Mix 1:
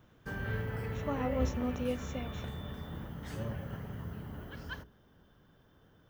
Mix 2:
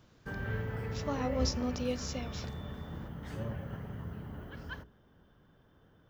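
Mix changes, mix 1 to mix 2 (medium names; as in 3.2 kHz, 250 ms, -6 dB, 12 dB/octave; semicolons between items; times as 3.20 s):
speech: remove boxcar filter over 9 samples; master: add treble shelf 4.1 kHz -7 dB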